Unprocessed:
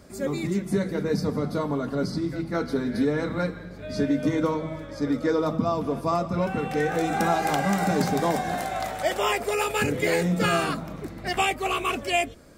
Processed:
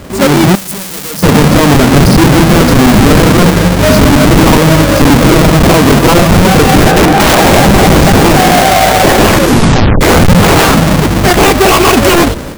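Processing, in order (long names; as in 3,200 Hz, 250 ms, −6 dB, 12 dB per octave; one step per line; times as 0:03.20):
each half-wave held at its own peak
0:00.55–0:01.23: first-order pre-emphasis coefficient 0.9
automatic gain control gain up to 12 dB
0:06.91–0:07.38: high-shelf EQ 3,000 Hz −11 dB
0:10.58–0:11.20: notch filter 390 Hz
wrap-around overflow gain 9 dB
0:09.26: tape stop 0.75 s
boost into a limiter +18 dB
level −1 dB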